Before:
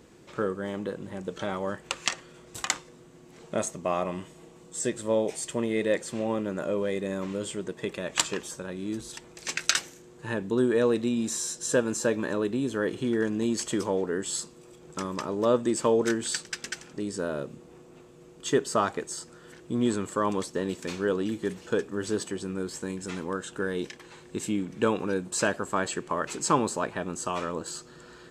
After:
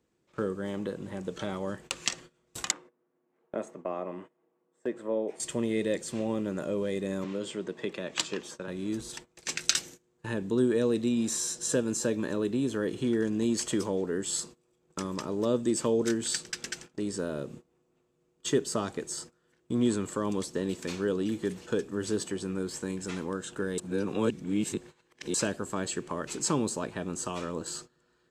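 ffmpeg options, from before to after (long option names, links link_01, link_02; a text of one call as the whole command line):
ffmpeg -i in.wav -filter_complex "[0:a]asettb=1/sr,asplit=3[link_01][link_02][link_03];[link_01]atrim=end=2.714[link_04];[link_02]atrim=start=2.71:end=5.4,asetpts=PTS-STARTPTS,afade=type=in:duration=0.004:curve=qsin,afade=type=out:start_time=2.686:duration=0.004:curve=qsin,acrossover=split=230 2100:gain=0.0891 1 0.0794[link_05][link_06][link_07];[link_05][link_06][link_07]amix=inputs=3:normalize=0[link_08];[link_03]atrim=start=5.396[link_09];[link_04][link_08]acrossfade=duration=0.004:curve1=hsin:curve2=qsin[link_10];[link_10][link_09]acrossfade=duration=0.004:curve1=qsin:curve2=hsin,asettb=1/sr,asplit=3[link_11][link_12][link_13];[link_11]atrim=end=7.244[link_14];[link_12]atrim=start=7.24:end=8.68,asetpts=PTS-STARTPTS,afade=type=in:duration=0.004:curve=qsin,afade=type=out:start_time=1.436:duration=0.004:curve=qsin,acrossover=split=160 5900:gain=0.251 1 0.251[link_15][link_16][link_17];[link_15][link_16][link_17]amix=inputs=3:normalize=0[link_18];[link_13]atrim=start=8.676[link_19];[link_14][link_18]acrossfade=duration=0.004:curve1=hsin:curve2=qsin[link_20];[link_20][link_19]acrossfade=duration=0.004:curve1=qsin:curve2=hsin,asplit=3[link_21][link_22][link_23];[link_21]atrim=end=23.782[link_24];[link_22]atrim=start=23.778:end=25.342,asetpts=PTS-STARTPTS,areverse[link_25];[link_23]atrim=start=25.338[link_26];[link_24][link_25]acrossfade=duration=0.004:curve1=hsin:curve2=hsin[link_27];[link_27][link_26]acrossfade=duration=0.004:curve1=hsin:curve2=hsin,agate=range=-21dB:threshold=-44dB:ratio=16:detection=peak,acrossover=split=450|3000[link_28][link_29][link_30];[link_29]acompressor=threshold=-40dB:ratio=2.5[link_31];[link_28][link_31][link_30]amix=inputs=3:normalize=0" out.wav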